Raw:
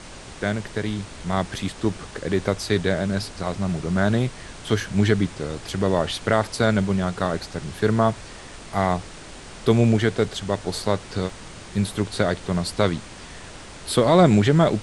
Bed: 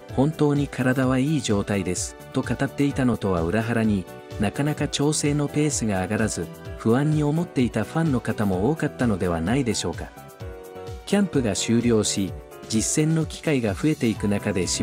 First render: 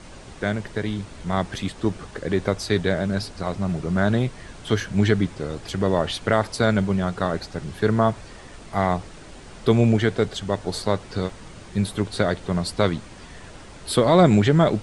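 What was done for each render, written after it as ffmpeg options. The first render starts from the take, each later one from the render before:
-af "afftdn=nr=6:nf=-41"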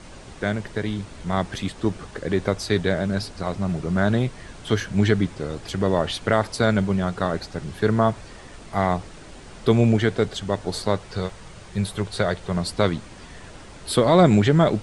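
-filter_complex "[0:a]asettb=1/sr,asplit=3[s0][s1][s2];[s0]atrim=end=10.994[s3];[s1]atrim=start=10.99:end=12.57,asetpts=PTS-STARTPTS,afade=t=in:d=0.004:c=qsin,afade=t=out:st=1.576:d=0.004:c=qsin,equalizer=f=270:w=2.9:g=-10[s4];[s2]atrim=start=12.566[s5];[s3][s4]acrossfade=d=0.004:c1=hsin:c2=qsin[s6];[s6][s5]acrossfade=d=0.004:c1=qsin:c2=hsin"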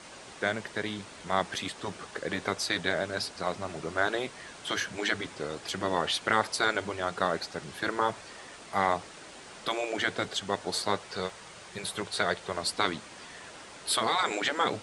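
-af "afftfilt=real='re*lt(hypot(re,im),0.562)':imag='im*lt(hypot(re,im),0.562)':win_size=1024:overlap=0.75,highpass=f=630:p=1"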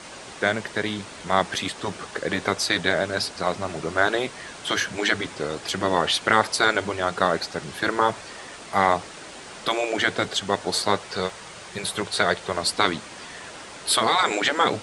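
-af "volume=2.24"

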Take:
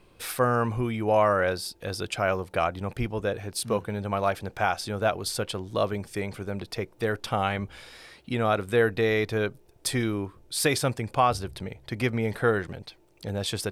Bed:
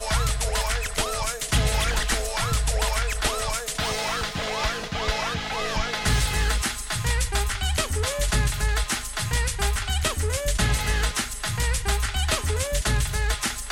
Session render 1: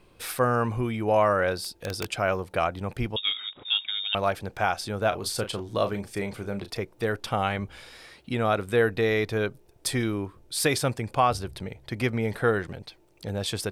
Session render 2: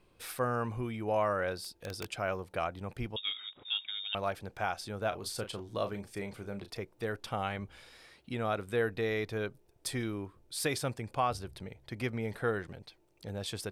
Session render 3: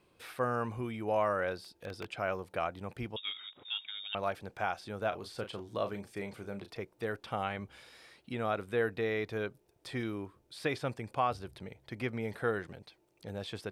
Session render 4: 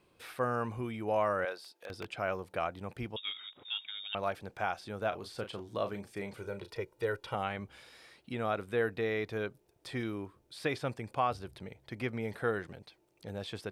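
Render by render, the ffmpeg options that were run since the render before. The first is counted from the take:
-filter_complex "[0:a]asettb=1/sr,asplit=3[s0][s1][s2];[s0]atrim=end=1.564[s3];[s1]atrim=start=1.56:end=2.07,asetpts=PTS-STARTPTS,afade=t=in:d=0.004:c=qsin,afade=t=out:st=0.506:d=0.004:c=qsin,aeval=exprs='(mod(12.6*val(0)+1,2)-1)/12.6':c=same[s4];[s2]atrim=start=2.066[s5];[s3][s4]acrossfade=d=0.004:c1=hsin:c2=qsin[s6];[s6][s5]acrossfade=d=0.004:c1=qsin:c2=hsin,asettb=1/sr,asplit=3[s7][s8][s9];[s7]atrim=end=3.164[s10];[s8]atrim=start=3.16:end=4.15,asetpts=PTS-STARTPTS,afade=t=in:d=0.004:c=qsin,afade=t=out:st=0.986:d=0.004:c=qsin,lowpass=f=3200:t=q:w=0.5098,lowpass=f=3200:t=q:w=0.6013,lowpass=f=3200:t=q:w=0.9,lowpass=f=3200:t=q:w=2.563,afreqshift=-3800[s11];[s9]atrim=start=4.146[s12];[s10][s11]acrossfade=d=0.004:c1=hsin:c2=qsin[s13];[s13][s12]acrossfade=d=0.004:c1=qsin:c2=hsin,asettb=1/sr,asplit=3[s14][s15][s16];[s14]atrim=end=5.084[s17];[s15]atrim=start=5.08:end=6.77,asetpts=PTS-STARTPTS,afade=t=in:d=0.004:c=qsin,afade=t=out:st=1.686:d=0.004:c=qsin,asplit=2[s18][s19];[s19]adelay=35,volume=0.335[s20];[s18][s20]amix=inputs=2:normalize=0,atrim=end_sample=74529[s21];[s16]atrim=start=6.766[s22];[s17][s21]acrossfade=d=0.004:c1=hsin:c2=qsin[s23];[s23][s22]acrossfade=d=0.004:c1=qsin:c2=hsin"
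-af "volume=0.376"
-filter_complex "[0:a]highpass=f=110:p=1,acrossover=split=3700[s0][s1];[s1]acompressor=threshold=0.00158:ratio=4:attack=1:release=60[s2];[s0][s2]amix=inputs=2:normalize=0"
-filter_complex "[0:a]asettb=1/sr,asplit=3[s0][s1][s2];[s0]atrim=end=1.454[s3];[s1]atrim=start=1.45:end=1.9,asetpts=PTS-STARTPTS,afade=t=in:d=0.004:c=qsin,afade=t=out:st=0.446:d=0.004:c=qsin,highpass=500[s4];[s2]atrim=start=1.896[s5];[s3][s4]acrossfade=d=0.004:c1=hsin:c2=qsin[s6];[s6][s5]acrossfade=d=0.004:c1=qsin:c2=hsin,asettb=1/sr,asplit=3[s7][s8][s9];[s7]atrim=end=6.374[s10];[s8]atrim=start=6.37:end=7.35,asetpts=PTS-STARTPTS,afade=t=in:d=0.004:c=qsin,afade=t=out:st=0.976:d=0.004:c=qsin,aecho=1:1:2.1:0.65,atrim=end_sample=43218[s11];[s9]atrim=start=7.346[s12];[s10][s11]acrossfade=d=0.004:c1=hsin:c2=qsin[s13];[s13][s12]acrossfade=d=0.004:c1=qsin:c2=hsin"

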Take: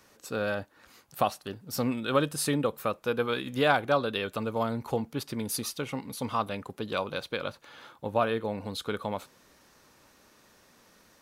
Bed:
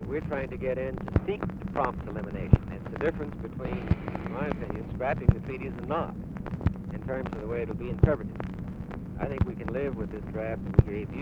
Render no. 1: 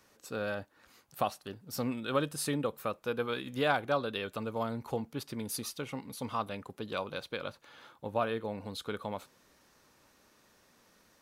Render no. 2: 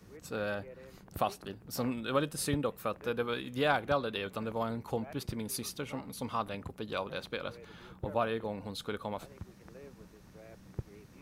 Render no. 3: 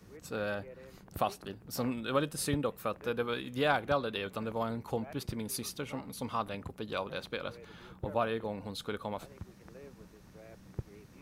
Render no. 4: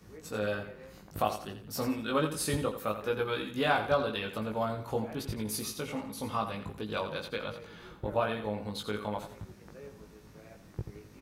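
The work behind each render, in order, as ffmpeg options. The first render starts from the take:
-af "volume=0.562"
-filter_complex "[1:a]volume=0.1[s0];[0:a][s0]amix=inputs=2:normalize=0"
-af anull
-filter_complex "[0:a]asplit=2[s0][s1];[s1]adelay=19,volume=0.708[s2];[s0][s2]amix=inputs=2:normalize=0,aecho=1:1:85|170|255|340:0.316|0.104|0.0344|0.0114"

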